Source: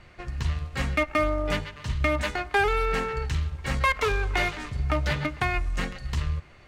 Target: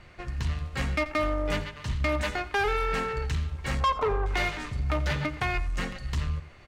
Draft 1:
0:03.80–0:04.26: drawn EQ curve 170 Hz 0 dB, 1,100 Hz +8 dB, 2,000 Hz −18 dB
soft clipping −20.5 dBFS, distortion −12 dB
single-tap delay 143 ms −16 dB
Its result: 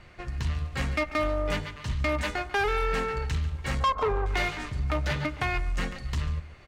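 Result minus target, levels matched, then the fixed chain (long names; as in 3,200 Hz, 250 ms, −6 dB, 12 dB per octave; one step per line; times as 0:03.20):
echo 57 ms late
0:03.80–0:04.26: drawn EQ curve 170 Hz 0 dB, 1,100 Hz +8 dB, 2,000 Hz −18 dB
soft clipping −20.5 dBFS, distortion −12 dB
single-tap delay 86 ms −16 dB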